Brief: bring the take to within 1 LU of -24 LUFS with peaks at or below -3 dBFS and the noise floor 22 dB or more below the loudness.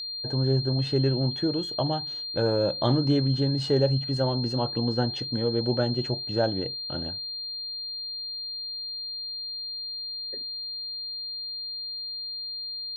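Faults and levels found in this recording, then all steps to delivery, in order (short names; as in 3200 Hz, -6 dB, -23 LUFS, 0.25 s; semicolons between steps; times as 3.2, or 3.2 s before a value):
ticks 27/s; steady tone 4200 Hz; tone level -32 dBFS; loudness -27.5 LUFS; peak -11.0 dBFS; loudness target -24.0 LUFS
-> de-click; notch 4200 Hz, Q 30; gain +3.5 dB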